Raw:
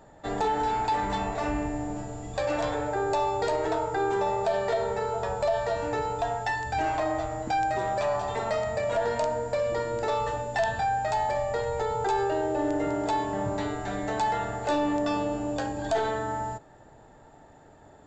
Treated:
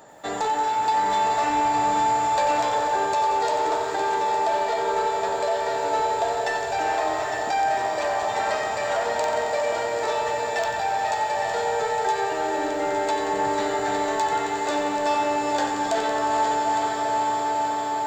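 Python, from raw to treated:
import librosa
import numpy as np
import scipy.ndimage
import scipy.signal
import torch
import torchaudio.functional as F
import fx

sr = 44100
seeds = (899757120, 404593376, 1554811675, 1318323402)

p1 = fx.highpass(x, sr, hz=480.0, slope=6)
p2 = p1 + fx.echo_diffused(p1, sr, ms=451, feedback_pct=80, wet_db=-8, dry=0)
p3 = fx.rider(p2, sr, range_db=4, speed_s=0.5)
p4 = p3 + 10.0 ** (-8.5 / 20.0) * np.pad(p3, (int(860 * sr / 1000.0), 0))[:len(p3)]
p5 = 10.0 ** (-29.5 / 20.0) * np.tanh(p4 / 10.0 ** (-29.5 / 20.0))
p6 = p4 + (p5 * librosa.db_to_amplitude(-4.0))
p7 = fx.high_shelf(p6, sr, hz=6500.0, db=7.5)
y = fx.echo_crushed(p7, sr, ms=90, feedback_pct=80, bits=9, wet_db=-9.0)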